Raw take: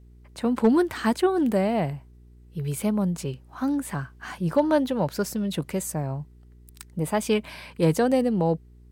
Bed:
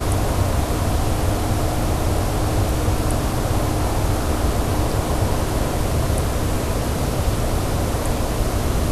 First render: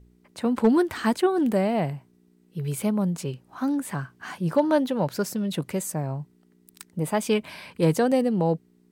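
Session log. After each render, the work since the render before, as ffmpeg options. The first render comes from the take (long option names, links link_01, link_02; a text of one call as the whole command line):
ffmpeg -i in.wav -af "bandreject=frequency=60:width_type=h:width=4,bandreject=frequency=120:width_type=h:width=4" out.wav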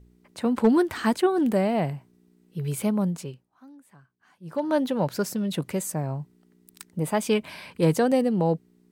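ffmpeg -i in.wav -filter_complex "[0:a]asplit=3[link_01][link_02][link_03];[link_01]atrim=end=3.5,asetpts=PTS-STARTPTS,afade=type=out:start_time=3.04:duration=0.46:silence=0.0668344[link_04];[link_02]atrim=start=3.5:end=4.4,asetpts=PTS-STARTPTS,volume=-23.5dB[link_05];[link_03]atrim=start=4.4,asetpts=PTS-STARTPTS,afade=type=in:duration=0.46:silence=0.0668344[link_06];[link_04][link_05][link_06]concat=n=3:v=0:a=1" out.wav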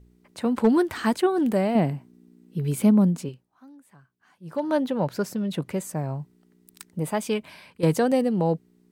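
ffmpeg -i in.wav -filter_complex "[0:a]asettb=1/sr,asplit=3[link_01][link_02][link_03];[link_01]atrim=end=1.754[link_04];[link_02]atrim=start=1.75:end=3.29,asetpts=PTS-STARTPTS,afade=type=in:duration=0.004:curve=qsin,afade=type=out:start_time=1.536:duration=0.004:curve=qsin,equalizer=frequency=250:width=1.5:gain=10[link_05];[link_03]atrim=start=3.286[link_06];[link_04][link_05]acrossfade=duration=0.004:curve1=hsin:curve2=qsin[link_07];[link_07][link_06]acrossfade=duration=0.004:curve1=qsin:curve2=hsin,asettb=1/sr,asplit=3[link_08][link_09][link_10];[link_08]atrim=end=4.774[link_11];[link_09]atrim=start=4.77:end=5.95,asetpts=PTS-STARTPTS,afade=type=in:duration=0.004:curve=qsin,afade=type=out:start_time=1.176:duration=0.004:curve=qsin,highshelf=frequency=3800:gain=-6.5[link_12];[link_10]atrim=start=5.946[link_13];[link_11][link_12]acrossfade=duration=0.004:curve1=hsin:curve2=qsin[link_14];[link_14][link_13]acrossfade=duration=0.004:curve1=qsin:curve2=hsin,asplit=2[link_15][link_16];[link_15]atrim=end=7.83,asetpts=PTS-STARTPTS,afade=type=out:start_time=6.91:duration=0.92:silence=0.334965[link_17];[link_16]atrim=start=7.83,asetpts=PTS-STARTPTS,afade=type=in:duration=0.004:curve=hsin:silence=0.334965[link_18];[link_17][link_18]concat=n=2:v=0:a=1" out.wav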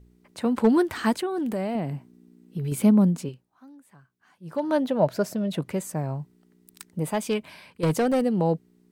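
ffmpeg -i in.wav -filter_complex "[0:a]asettb=1/sr,asplit=3[link_01][link_02][link_03];[link_01]atrim=end=1.124[link_04];[link_02]atrim=start=1.12:end=2.72,asetpts=PTS-STARTPTS,afade=type=in:duration=0.004:curve=qsin,afade=type=out:start_time=1.596:duration=0.004:curve=qsin,acompressor=threshold=-26dB:ratio=3:attack=3.2:release=140:knee=1:detection=peak[link_05];[link_03]atrim=start=2.716[link_06];[link_04][link_05]acrossfade=duration=0.004:curve1=hsin:curve2=qsin[link_07];[link_07][link_06]acrossfade=duration=0.004:curve1=qsin:curve2=hsin,asettb=1/sr,asplit=3[link_08][link_09][link_10];[link_08]atrim=end=4.844[link_11];[link_09]atrim=start=4.84:end=5.57,asetpts=PTS-STARTPTS,afade=type=in:duration=0.004:curve=qsin,afade=type=out:start_time=0.726:duration=0.004:curve=qsin,equalizer=frequency=640:width=6.4:gain=13[link_12];[link_10]atrim=start=5.566[link_13];[link_11][link_12]acrossfade=duration=0.004:curve1=hsin:curve2=qsin[link_14];[link_14][link_13]acrossfade=duration=0.004:curve1=qsin:curve2=hsin,asettb=1/sr,asplit=3[link_15][link_16][link_17];[link_15]atrim=end=7.104[link_18];[link_16]atrim=start=7.1:end=8.22,asetpts=PTS-STARTPTS,afade=type=in:duration=0.004:curve=qsin,afade=type=out:start_time=1.116:duration=0.004:curve=qsin,volume=18dB,asoftclip=hard,volume=-18dB[link_19];[link_17]atrim=start=8.216[link_20];[link_18][link_19]acrossfade=duration=0.004:curve1=hsin:curve2=qsin[link_21];[link_21][link_20]acrossfade=duration=0.004:curve1=qsin:curve2=hsin" out.wav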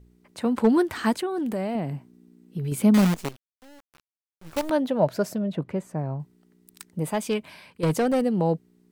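ffmpeg -i in.wav -filter_complex "[0:a]asettb=1/sr,asplit=3[link_01][link_02][link_03];[link_01]atrim=end=2.944[link_04];[link_02]atrim=start=2.94:end=4.7,asetpts=PTS-STARTPTS,afade=type=in:duration=0.004:curve=qsin,afade=type=out:start_time=1.756:duration=0.004:curve=qsin,acrusher=bits=5:dc=4:mix=0:aa=0.000001[link_05];[link_03]atrim=start=4.696[link_06];[link_04][link_05]acrossfade=duration=0.004:curve1=hsin:curve2=qsin[link_07];[link_07][link_06]acrossfade=duration=0.004:curve1=qsin:curve2=hsin,asettb=1/sr,asplit=3[link_08][link_09][link_10];[link_08]atrim=end=5.384[link_11];[link_09]atrim=start=5.38:end=6.2,asetpts=PTS-STARTPTS,afade=type=in:duration=0.004:curve=qsin,afade=type=out:start_time=0.816:duration=0.004:curve=qsin,lowpass=frequency=1400:poles=1[link_12];[link_10]atrim=start=6.196[link_13];[link_11][link_12]acrossfade=duration=0.004:curve1=hsin:curve2=qsin[link_14];[link_14][link_13]acrossfade=duration=0.004:curve1=qsin:curve2=hsin" out.wav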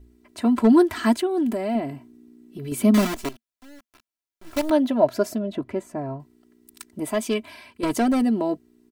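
ffmpeg -i in.wav -af "equalizer=frequency=230:width=6.1:gain=5.5,aecho=1:1:3:0.85" out.wav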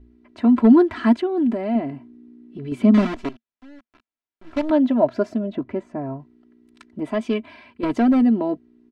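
ffmpeg -i in.wav -af "lowpass=2900,equalizer=frequency=250:width_type=o:width=0.52:gain=5" out.wav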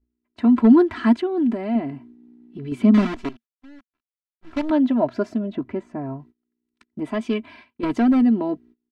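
ffmpeg -i in.wav -af "agate=range=-25dB:threshold=-45dB:ratio=16:detection=peak,equalizer=frequency=570:width_type=o:width=0.57:gain=-5" out.wav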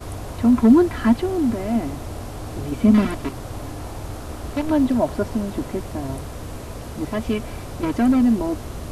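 ffmpeg -i in.wav -i bed.wav -filter_complex "[1:a]volume=-12dB[link_01];[0:a][link_01]amix=inputs=2:normalize=0" out.wav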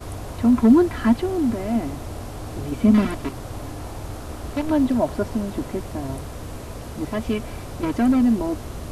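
ffmpeg -i in.wav -af "volume=-1dB" out.wav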